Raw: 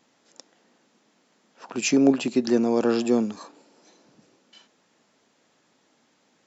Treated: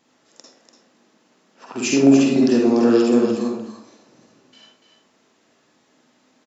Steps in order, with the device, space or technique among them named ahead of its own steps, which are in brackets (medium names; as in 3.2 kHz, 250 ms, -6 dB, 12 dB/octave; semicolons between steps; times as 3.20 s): delay 291 ms -8 dB; bathroom (reverberation RT60 0.55 s, pre-delay 43 ms, DRR -2 dB)